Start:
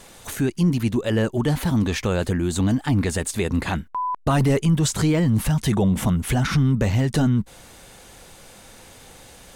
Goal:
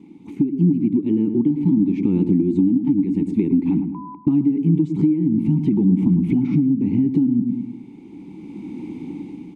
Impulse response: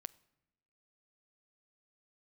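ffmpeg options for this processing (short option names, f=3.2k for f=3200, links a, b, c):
-filter_complex "[0:a]asplit=3[a][b][c];[a]bandpass=f=300:t=q:w=8,volume=0dB[d];[b]bandpass=f=870:t=q:w=8,volume=-6dB[e];[c]bandpass=f=2.24k:t=q:w=8,volume=-9dB[f];[d][e][f]amix=inputs=3:normalize=0,lowshelf=f=500:t=q:w=1.5:g=12.5,asplit=2[g][h];[h]adelay=106,lowpass=f=1.3k:p=1,volume=-9dB,asplit=2[i][j];[j]adelay=106,lowpass=f=1.3k:p=1,volume=0.44,asplit=2[k][l];[l]adelay=106,lowpass=f=1.3k:p=1,volume=0.44,asplit=2[m][n];[n]adelay=106,lowpass=f=1.3k:p=1,volume=0.44,asplit=2[o][p];[p]adelay=106,lowpass=f=1.3k:p=1,volume=0.44[q];[g][i][k][m][o][q]amix=inputs=6:normalize=0,asplit=2[r][s];[1:a]atrim=start_sample=2205[t];[s][t]afir=irnorm=-1:irlink=0,volume=7dB[u];[r][u]amix=inputs=2:normalize=0,acompressor=threshold=-14dB:ratio=8,equalizer=f=180:w=1.7:g=11.5,dynaudnorm=f=120:g=17:m=14dB,volume=-6dB"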